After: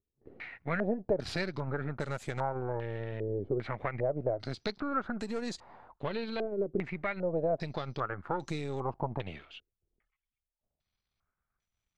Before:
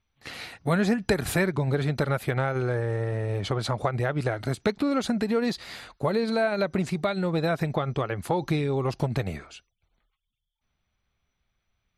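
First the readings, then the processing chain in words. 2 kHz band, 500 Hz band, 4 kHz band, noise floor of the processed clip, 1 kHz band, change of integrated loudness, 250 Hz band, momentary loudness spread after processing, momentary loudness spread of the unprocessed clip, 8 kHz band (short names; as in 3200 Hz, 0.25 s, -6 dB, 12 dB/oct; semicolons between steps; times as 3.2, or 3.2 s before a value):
-8.5 dB, -6.5 dB, -9.0 dB, under -85 dBFS, -6.0 dB, -8.0 dB, -10.0 dB, 9 LU, 6 LU, -13.5 dB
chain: half-wave gain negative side -7 dB; stepped low-pass 2.5 Hz 400–7200 Hz; gain -8.5 dB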